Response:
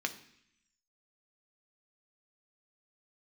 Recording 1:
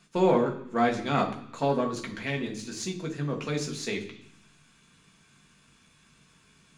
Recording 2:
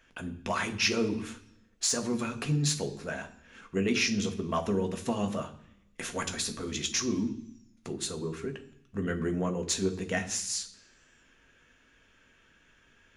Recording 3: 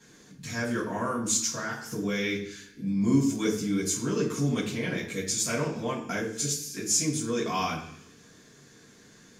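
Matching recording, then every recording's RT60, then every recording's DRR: 2; 0.70, 0.70, 0.70 s; 1.0, 5.5, -7.5 dB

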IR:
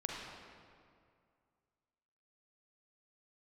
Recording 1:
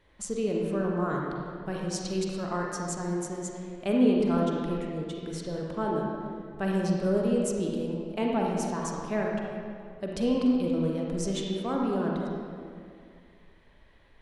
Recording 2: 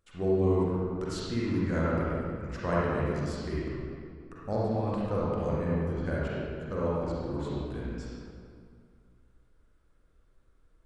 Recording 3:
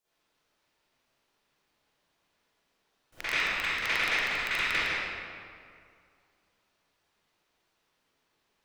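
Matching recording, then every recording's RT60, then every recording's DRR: 1; 2.2, 2.2, 2.2 s; -2.0, -7.5, -16.5 dB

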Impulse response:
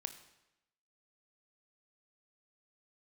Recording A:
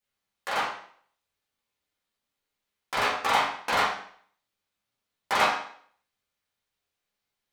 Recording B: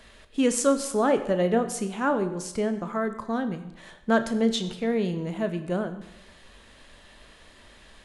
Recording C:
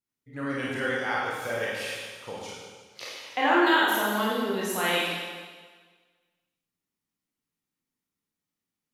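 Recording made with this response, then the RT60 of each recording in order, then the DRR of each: B; 0.55, 0.90, 1.5 s; -8.5, 9.0, -6.5 dB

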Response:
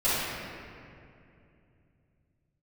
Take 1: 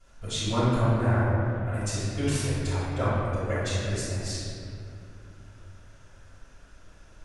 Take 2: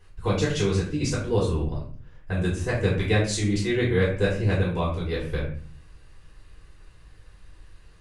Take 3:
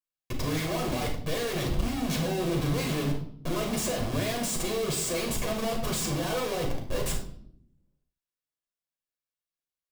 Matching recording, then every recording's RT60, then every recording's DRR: 1; 2.6 s, 0.45 s, not exponential; -15.0, -7.0, 0.0 dB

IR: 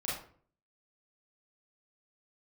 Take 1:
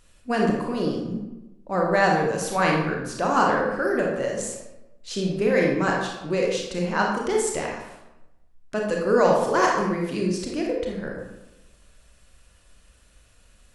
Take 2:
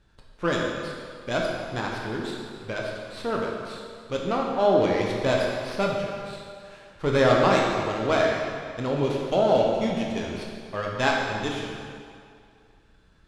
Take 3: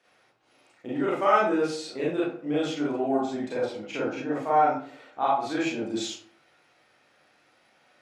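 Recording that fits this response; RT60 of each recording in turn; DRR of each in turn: 3; 1.0, 2.3, 0.50 s; -1.0, -2.0, -7.5 dB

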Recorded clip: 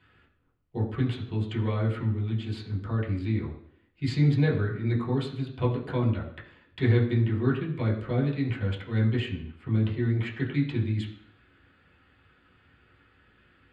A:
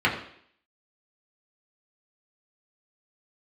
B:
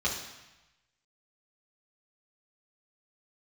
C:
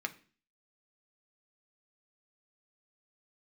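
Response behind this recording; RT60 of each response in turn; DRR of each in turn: A; 0.60, 1.0, 0.40 s; -5.0, -7.0, 5.0 dB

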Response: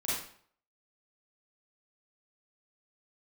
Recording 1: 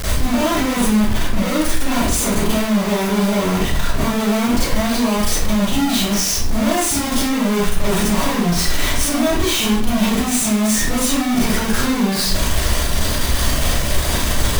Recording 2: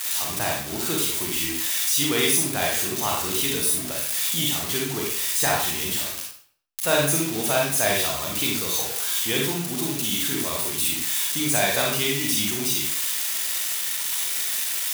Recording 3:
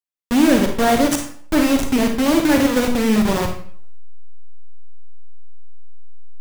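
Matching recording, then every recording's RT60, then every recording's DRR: 1; 0.55, 0.55, 0.55 s; -9.0, -2.0, 4.0 dB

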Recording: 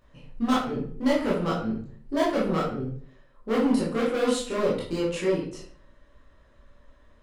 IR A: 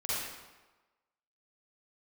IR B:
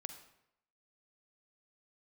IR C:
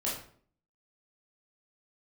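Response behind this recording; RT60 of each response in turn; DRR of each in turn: C; 1.2, 0.80, 0.55 s; -10.5, 7.5, -6.5 dB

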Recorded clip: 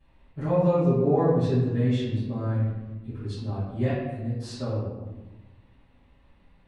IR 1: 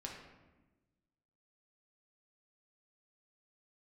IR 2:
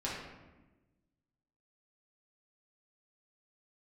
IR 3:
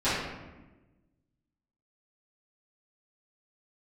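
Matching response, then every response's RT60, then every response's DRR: 3; 1.2, 1.1, 1.1 s; -1.5, -7.0, -16.5 dB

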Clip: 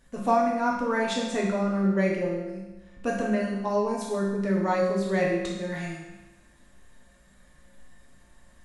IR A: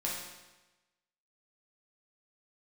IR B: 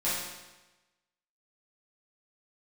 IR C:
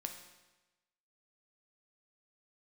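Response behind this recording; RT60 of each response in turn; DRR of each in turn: A; 1.1, 1.1, 1.1 s; -5.0, -11.5, 4.0 dB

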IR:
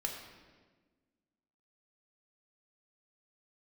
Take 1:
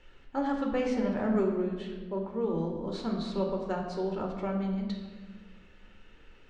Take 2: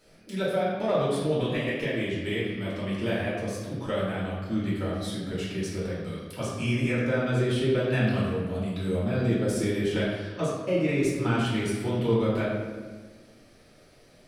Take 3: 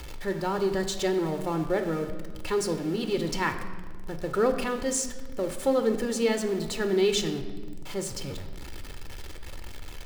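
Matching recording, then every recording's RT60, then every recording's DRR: 1; 1.4, 1.4, 1.4 s; 1.0, -8.0, 7.0 dB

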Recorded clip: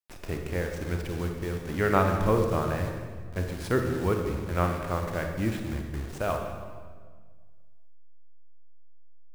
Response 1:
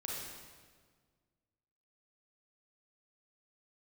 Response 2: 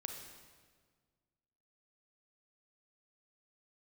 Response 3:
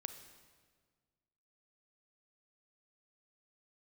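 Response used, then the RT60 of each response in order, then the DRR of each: 2; 1.6, 1.6, 1.6 s; -4.0, 3.5, 8.5 dB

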